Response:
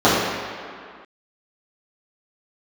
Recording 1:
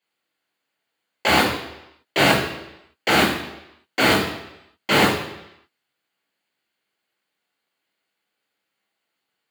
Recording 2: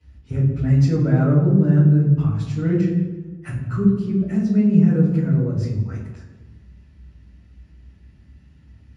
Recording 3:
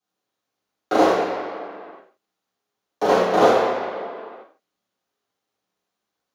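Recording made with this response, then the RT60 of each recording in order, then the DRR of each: 3; 0.85, 1.2, 2.1 s; -3.0, -9.0, -12.5 dB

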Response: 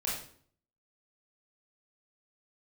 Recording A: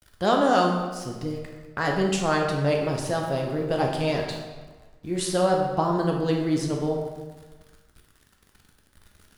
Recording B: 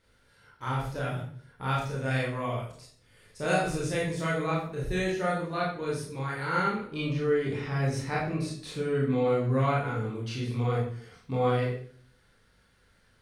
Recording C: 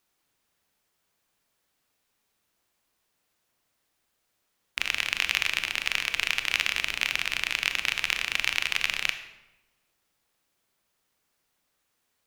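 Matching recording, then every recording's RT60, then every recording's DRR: B; 1.4, 0.55, 1.0 s; 0.0, -6.0, 8.5 dB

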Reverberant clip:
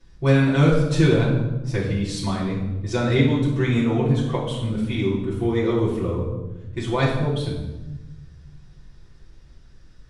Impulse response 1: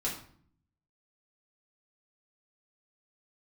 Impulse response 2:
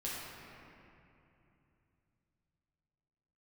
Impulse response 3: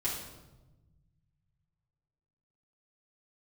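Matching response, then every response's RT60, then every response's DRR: 3; 0.55, 2.9, 1.1 s; -5.5, -7.0, -8.0 dB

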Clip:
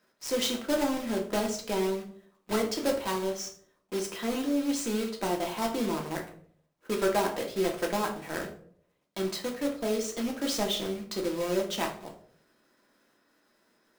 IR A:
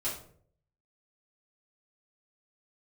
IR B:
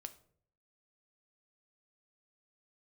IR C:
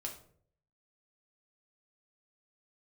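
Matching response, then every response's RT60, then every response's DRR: C; 0.55, 0.60, 0.55 s; -9.5, 8.5, 0.0 dB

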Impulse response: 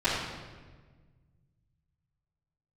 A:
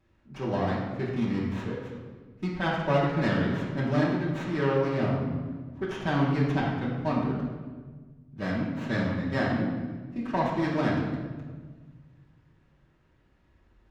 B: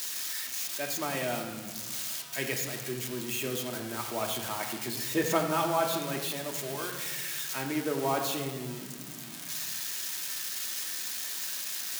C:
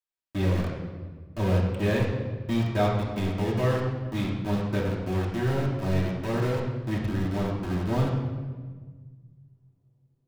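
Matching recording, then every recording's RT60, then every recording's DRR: A; 1.5, 1.5, 1.5 s; -16.0, 1.0, -6.5 dB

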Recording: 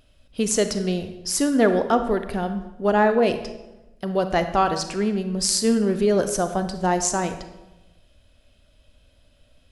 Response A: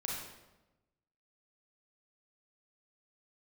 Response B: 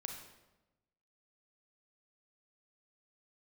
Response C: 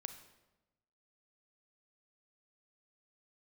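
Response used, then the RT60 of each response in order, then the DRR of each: C; 1.0, 1.0, 1.0 s; -3.5, 2.5, 8.5 dB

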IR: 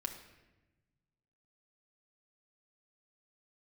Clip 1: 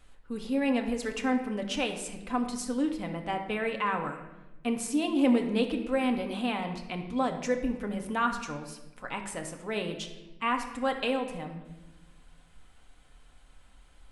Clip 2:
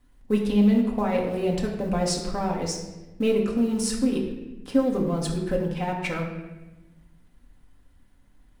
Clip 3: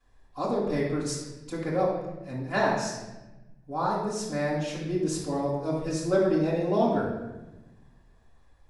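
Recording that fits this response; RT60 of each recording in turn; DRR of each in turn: 1; 1.1, 1.1, 1.1 s; 3.0, -2.0, -12.0 dB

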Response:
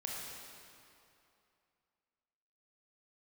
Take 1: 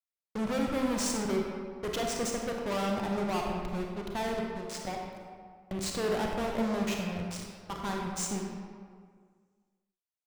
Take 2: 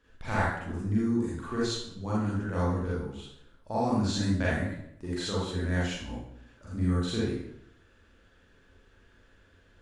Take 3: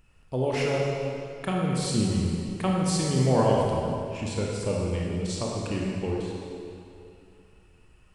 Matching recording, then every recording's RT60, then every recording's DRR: 3; 1.9, 0.75, 2.7 s; 0.0, -8.0, -3.5 dB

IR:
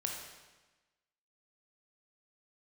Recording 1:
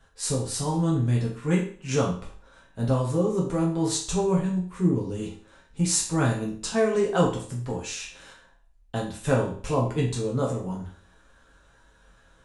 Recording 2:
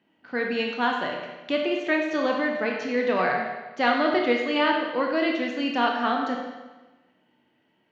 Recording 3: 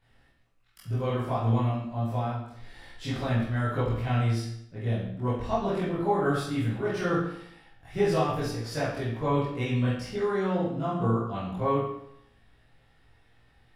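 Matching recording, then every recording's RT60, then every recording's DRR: 2; 0.45, 1.2, 0.75 s; -3.5, 0.0, -11.5 dB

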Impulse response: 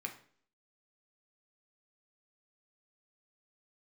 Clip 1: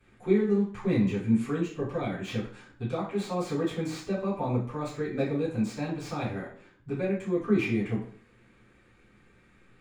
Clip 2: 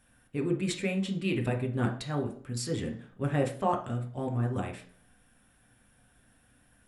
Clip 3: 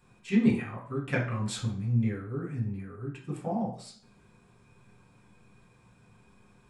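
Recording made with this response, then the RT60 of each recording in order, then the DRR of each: 2; 0.50, 0.50, 0.50 s; -13.5, 2.5, -4.0 dB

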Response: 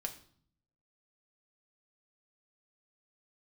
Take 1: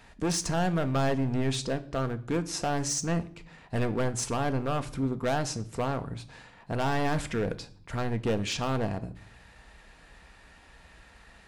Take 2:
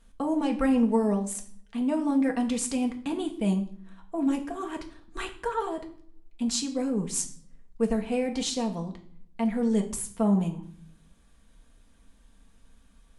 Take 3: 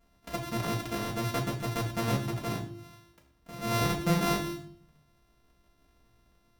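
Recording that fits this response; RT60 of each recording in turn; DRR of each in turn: 2; 0.55, 0.55, 0.55 s; 8.5, 2.0, -5.5 dB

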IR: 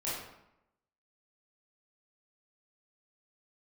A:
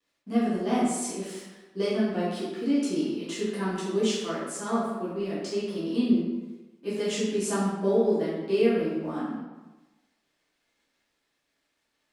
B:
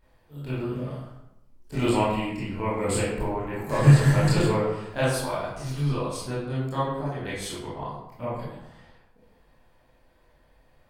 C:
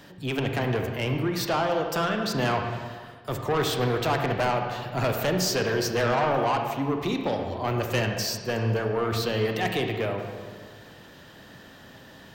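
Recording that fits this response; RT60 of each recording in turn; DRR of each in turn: B; 1.1, 0.85, 1.7 s; -10.5, -9.5, 3.5 dB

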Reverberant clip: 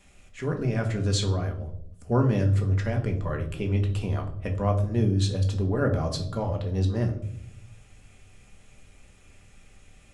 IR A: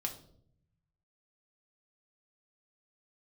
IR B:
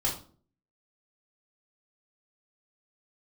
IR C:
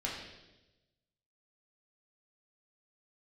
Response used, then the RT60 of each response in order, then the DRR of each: A; 0.65, 0.45, 1.0 s; 1.5, -4.5, -4.5 dB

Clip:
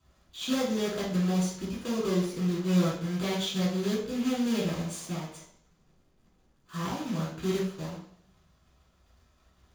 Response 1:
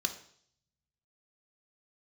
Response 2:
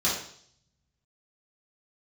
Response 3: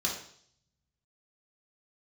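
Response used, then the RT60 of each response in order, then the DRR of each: 2; 0.60, 0.60, 0.60 s; 6.5, -7.5, -2.5 dB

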